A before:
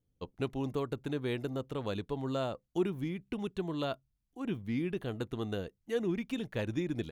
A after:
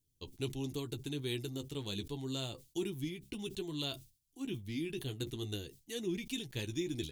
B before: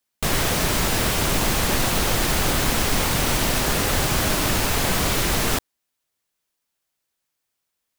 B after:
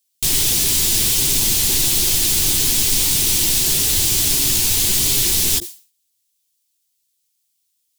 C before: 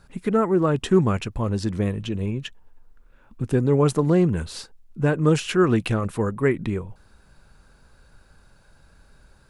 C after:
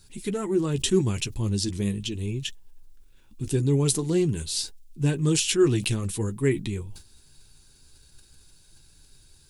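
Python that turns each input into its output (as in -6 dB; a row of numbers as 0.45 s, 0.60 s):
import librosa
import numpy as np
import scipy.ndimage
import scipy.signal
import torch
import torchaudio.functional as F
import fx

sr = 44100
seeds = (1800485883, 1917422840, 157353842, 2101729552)

y = fx.curve_eq(x, sr, hz=(110.0, 220.0, 350.0, 570.0, 880.0, 1300.0, 3400.0, 8100.0), db=(0, -6, 1, -13, -8, -12, 8, 13))
y = fx.chorus_voices(y, sr, voices=4, hz=0.71, base_ms=11, depth_ms=3.9, mix_pct=30)
y = fx.dynamic_eq(y, sr, hz=200.0, q=7.1, threshold_db=-47.0, ratio=4.0, max_db=5)
y = fx.sustainer(y, sr, db_per_s=150.0)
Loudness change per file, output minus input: -4.0 LU, +6.5 LU, -3.0 LU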